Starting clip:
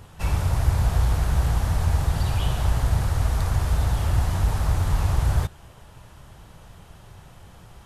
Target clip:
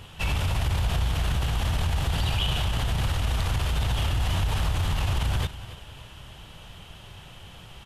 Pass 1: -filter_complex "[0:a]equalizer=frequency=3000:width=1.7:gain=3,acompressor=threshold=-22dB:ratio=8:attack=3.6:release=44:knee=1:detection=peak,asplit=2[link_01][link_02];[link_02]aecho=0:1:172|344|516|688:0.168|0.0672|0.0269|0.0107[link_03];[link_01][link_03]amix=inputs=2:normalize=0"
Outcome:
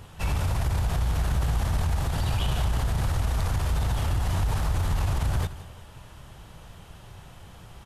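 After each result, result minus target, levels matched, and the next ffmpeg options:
echo 110 ms early; 4,000 Hz band −7.0 dB
-filter_complex "[0:a]equalizer=frequency=3000:width=1.7:gain=3,acompressor=threshold=-22dB:ratio=8:attack=3.6:release=44:knee=1:detection=peak,asplit=2[link_01][link_02];[link_02]aecho=0:1:282|564|846|1128:0.168|0.0672|0.0269|0.0107[link_03];[link_01][link_03]amix=inputs=2:normalize=0"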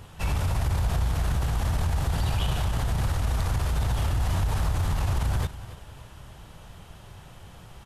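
4,000 Hz band −7.0 dB
-filter_complex "[0:a]equalizer=frequency=3000:width=1.7:gain=13,acompressor=threshold=-22dB:ratio=8:attack=3.6:release=44:knee=1:detection=peak,asplit=2[link_01][link_02];[link_02]aecho=0:1:282|564|846|1128:0.168|0.0672|0.0269|0.0107[link_03];[link_01][link_03]amix=inputs=2:normalize=0"

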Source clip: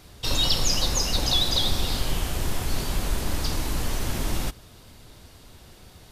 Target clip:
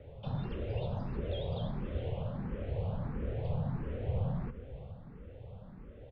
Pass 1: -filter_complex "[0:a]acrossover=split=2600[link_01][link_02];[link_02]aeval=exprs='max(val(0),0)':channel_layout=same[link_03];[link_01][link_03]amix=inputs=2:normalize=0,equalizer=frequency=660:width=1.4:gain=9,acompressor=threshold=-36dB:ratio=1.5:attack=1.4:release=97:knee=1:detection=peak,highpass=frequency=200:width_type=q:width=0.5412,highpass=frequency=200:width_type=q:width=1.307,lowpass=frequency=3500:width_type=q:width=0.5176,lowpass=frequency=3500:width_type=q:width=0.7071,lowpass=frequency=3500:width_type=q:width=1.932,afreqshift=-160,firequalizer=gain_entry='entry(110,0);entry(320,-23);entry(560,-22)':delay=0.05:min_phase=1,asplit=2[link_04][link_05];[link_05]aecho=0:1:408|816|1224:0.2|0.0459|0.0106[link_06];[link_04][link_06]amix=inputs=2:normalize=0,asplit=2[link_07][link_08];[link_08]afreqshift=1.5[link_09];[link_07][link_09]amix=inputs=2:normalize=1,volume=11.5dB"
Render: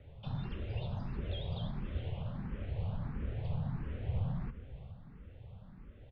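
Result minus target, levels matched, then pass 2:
500 Hz band −6.5 dB
-filter_complex "[0:a]acrossover=split=2600[link_01][link_02];[link_02]aeval=exprs='max(val(0),0)':channel_layout=same[link_03];[link_01][link_03]amix=inputs=2:normalize=0,equalizer=frequency=660:width=1.4:gain=21,acompressor=threshold=-36dB:ratio=1.5:attack=1.4:release=97:knee=1:detection=peak,highpass=frequency=200:width_type=q:width=0.5412,highpass=frequency=200:width_type=q:width=1.307,lowpass=frequency=3500:width_type=q:width=0.5176,lowpass=frequency=3500:width_type=q:width=0.7071,lowpass=frequency=3500:width_type=q:width=1.932,afreqshift=-160,firequalizer=gain_entry='entry(110,0);entry(320,-23);entry(560,-22)':delay=0.05:min_phase=1,asplit=2[link_04][link_05];[link_05]aecho=0:1:408|816|1224:0.2|0.0459|0.0106[link_06];[link_04][link_06]amix=inputs=2:normalize=0,asplit=2[link_07][link_08];[link_08]afreqshift=1.5[link_09];[link_07][link_09]amix=inputs=2:normalize=1,volume=11.5dB"

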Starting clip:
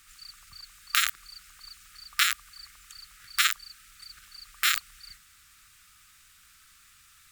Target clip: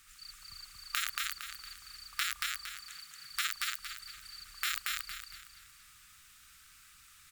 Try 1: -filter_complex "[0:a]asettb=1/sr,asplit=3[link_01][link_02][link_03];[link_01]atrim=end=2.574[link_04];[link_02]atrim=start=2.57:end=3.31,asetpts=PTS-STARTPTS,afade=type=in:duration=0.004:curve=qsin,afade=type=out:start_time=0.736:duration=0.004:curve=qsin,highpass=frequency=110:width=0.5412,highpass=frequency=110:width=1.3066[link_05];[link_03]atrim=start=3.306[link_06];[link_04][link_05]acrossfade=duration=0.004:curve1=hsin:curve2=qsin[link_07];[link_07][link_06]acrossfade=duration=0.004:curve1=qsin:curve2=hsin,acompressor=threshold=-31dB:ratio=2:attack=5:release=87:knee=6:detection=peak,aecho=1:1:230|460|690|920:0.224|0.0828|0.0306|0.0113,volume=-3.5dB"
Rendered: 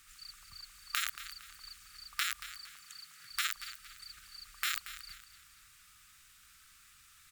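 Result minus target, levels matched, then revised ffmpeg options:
echo-to-direct −11 dB
-filter_complex "[0:a]asettb=1/sr,asplit=3[link_01][link_02][link_03];[link_01]atrim=end=2.574[link_04];[link_02]atrim=start=2.57:end=3.31,asetpts=PTS-STARTPTS,afade=type=in:duration=0.004:curve=qsin,afade=type=out:start_time=0.736:duration=0.004:curve=qsin,highpass=frequency=110:width=0.5412,highpass=frequency=110:width=1.3066[link_05];[link_03]atrim=start=3.306[link_06];[link_04][link_05]acrossfade=duration=0.004:curve1=hsin:curve2=qsin[link_07];[link_07][link_06]acrossfade=duration=0.004:curve1=qsin:curve2=hsin,acompressor=threshold=-31dB:ratio=2:attack=5:release=87:knee=6:detection=peak,aecho=1:1:230|460|690|920|1150:0.794|0.294|0.109|0.0402|0.0149,volume=-3.5dB"

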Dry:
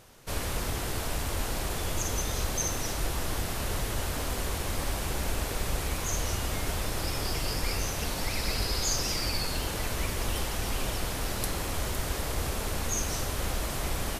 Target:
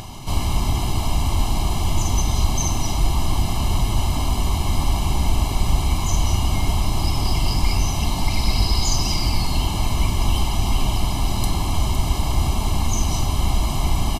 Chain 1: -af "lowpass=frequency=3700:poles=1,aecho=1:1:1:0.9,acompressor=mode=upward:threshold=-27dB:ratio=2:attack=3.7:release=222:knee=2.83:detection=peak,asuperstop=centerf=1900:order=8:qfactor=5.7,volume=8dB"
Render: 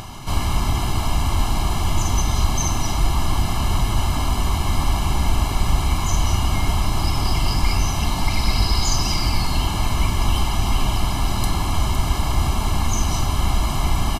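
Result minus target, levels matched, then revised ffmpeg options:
2,000 Hz band +3.0 dB
-af "lowpass=frequency=3700:poles=1,equalizer=frequency=1500:width_type=o:width=0.49:gain=-13.5,aecho=1:1:1:0.9,acompressor=mode=upward:threshold=-27dB:ratio=2:attack=3.7:release=222:knee=2.83:detection=peak,asuperstop=centerf=1900:order=8:qfactor=5.7,volume=8dB"

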